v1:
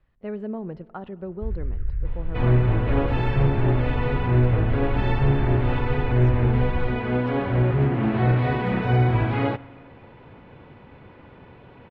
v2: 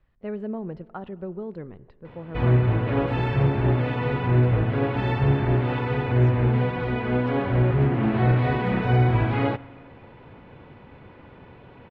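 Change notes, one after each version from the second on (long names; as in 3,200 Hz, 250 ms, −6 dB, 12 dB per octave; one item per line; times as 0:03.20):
first sound: muted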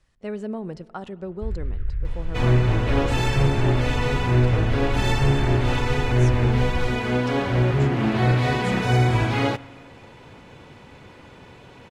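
first sound: unmuted
master: remove high-frequency loss of the air 440 metres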